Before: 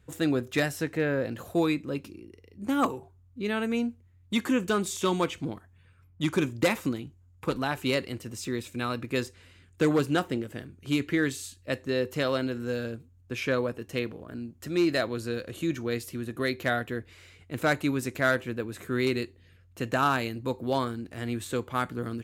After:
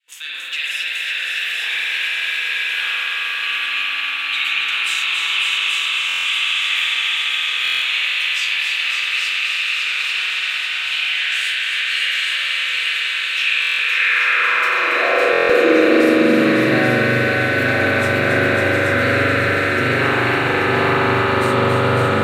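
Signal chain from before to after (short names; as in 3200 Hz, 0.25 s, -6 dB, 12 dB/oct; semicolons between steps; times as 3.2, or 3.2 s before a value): spectral trails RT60 0.34 s; expander -52 dBFS; bell 2000 Hz +9 dB 2.6 oct; in parallel at +2 dB: compressor, threshold -33 dBFS, peak gain reduction 19 dB; on the sum: limiter -11.5 dBFS, peak gain reduction 8.5 dB; on a send: swelling echo 0.107 s, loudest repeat 8, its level -12 dB; on the sum: wow and flutter 100 cents; multi-head echo 0.277 s, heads all three, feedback 49%, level -7 dB; high-pass sweep 2800 Hz -> 74 Hz, 13.59–17.29; spring tank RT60 3.9 s, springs 41 ms, chirp 55 ms, DRR -8 dB; stuck buffer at 6.07/7.63/13.6/15.31, samples 1024, times 7; gain -5.5 dB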